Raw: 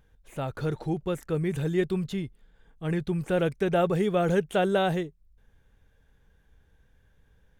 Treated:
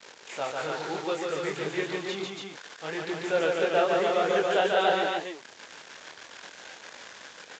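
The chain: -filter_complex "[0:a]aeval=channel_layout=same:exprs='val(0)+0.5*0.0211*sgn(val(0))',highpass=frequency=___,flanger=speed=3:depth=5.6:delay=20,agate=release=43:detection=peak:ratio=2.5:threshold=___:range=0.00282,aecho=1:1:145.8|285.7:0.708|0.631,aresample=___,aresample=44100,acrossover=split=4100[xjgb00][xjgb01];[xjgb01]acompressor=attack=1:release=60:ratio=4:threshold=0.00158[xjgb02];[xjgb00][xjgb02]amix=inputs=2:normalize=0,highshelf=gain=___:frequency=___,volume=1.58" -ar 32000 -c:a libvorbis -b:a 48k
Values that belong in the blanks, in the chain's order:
520, 0.00316, 16000, 7, 4900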